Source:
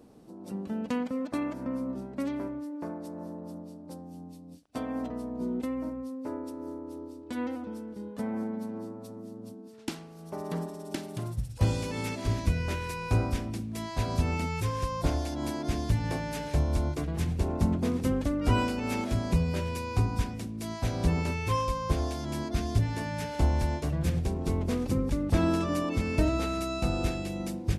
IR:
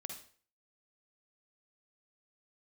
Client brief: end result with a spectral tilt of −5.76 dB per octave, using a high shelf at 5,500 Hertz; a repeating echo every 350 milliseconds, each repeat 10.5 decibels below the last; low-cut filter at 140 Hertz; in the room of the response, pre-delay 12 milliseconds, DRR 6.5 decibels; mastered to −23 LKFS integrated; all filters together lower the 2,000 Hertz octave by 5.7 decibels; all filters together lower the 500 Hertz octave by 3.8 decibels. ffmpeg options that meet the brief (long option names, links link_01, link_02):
-filter_complex "[0:a]highpass=140,equalizer=frequency=500:width_type=o:gain=-4.5,equalizer=frequency=2000:width_type=o:gain=-8.5,highshelf=frequency=5500:gain=5.5,aecho=1:1:350|700|1050:0.299|0.0896|0.0269,asplit=2[link_01][link_02];[1:a]atrim=start_sample=2205,adelay=12[link_03];[link_02][link_03]afir=irnorm=-1:irlink=0,volume=-3.5dB[link_04];[link_01][link_04]amix=inputs=2:normalize=0,volume=10dB"